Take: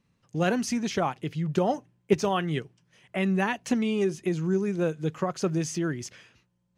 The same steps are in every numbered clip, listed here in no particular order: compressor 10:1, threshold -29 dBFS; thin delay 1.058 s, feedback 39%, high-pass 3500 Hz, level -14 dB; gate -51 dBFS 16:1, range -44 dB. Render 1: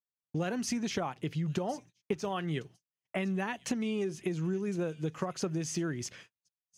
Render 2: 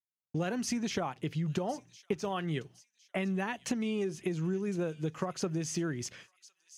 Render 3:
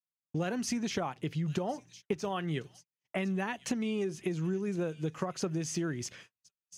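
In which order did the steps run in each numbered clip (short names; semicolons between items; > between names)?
compressor > thin delay > gate; gate > compressor > thin delay; thin delay > gate > compressor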